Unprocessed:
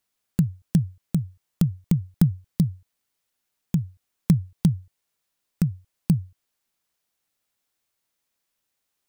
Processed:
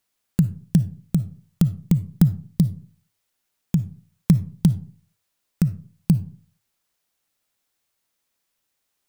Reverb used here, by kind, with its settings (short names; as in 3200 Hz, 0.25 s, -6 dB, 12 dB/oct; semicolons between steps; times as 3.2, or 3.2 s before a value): digital reverb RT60 0.42 s, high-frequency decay 0.45×, pre-delay 15 ms, DRR 14.5 dB; gain +2.5 dB